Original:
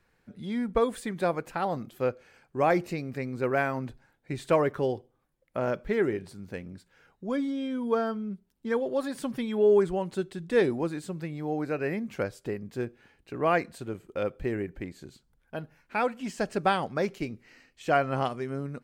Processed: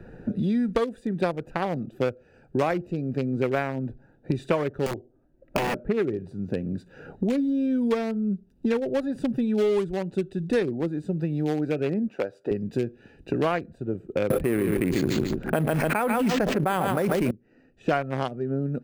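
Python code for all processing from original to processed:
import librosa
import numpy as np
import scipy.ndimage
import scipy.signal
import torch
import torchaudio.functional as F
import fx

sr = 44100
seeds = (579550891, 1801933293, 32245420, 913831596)

y = fx.chain(x, sr, fx.comb(ms=3.1, depth=0.47),
    fx.overflow_wrap(gain_db=23.5), at=(4.86, 5.81))
y = fx.chain(y, sr, fx.bessel_highpass(hz=570.0, order=2),
    fx.high_shelf(hz=6500.0, db=-9.0), at=(12.08, 12.51))
y = fx.chain(y, sr, fx.echo_feedback(ms=143, feedback_pct=32, wet_db=-12.5),
    fx.resample_bad(factor=4, down='none', up='hold'),
    fx.env_flatten(amount_pct=100), at=(14.3, 17.31))
y = fx.wiener(y, sr, points=41)
y = fx.band_squash(y, sr, depth_pct=100)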